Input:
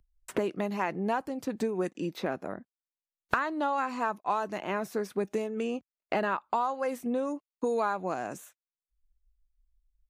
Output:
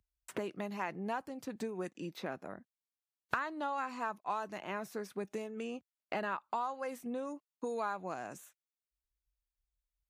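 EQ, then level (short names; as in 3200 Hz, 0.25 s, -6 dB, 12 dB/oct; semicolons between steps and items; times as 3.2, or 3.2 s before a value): HPF 68 Hz; bell 370 Hz -4 dB 2.3 oct; -5.5 dB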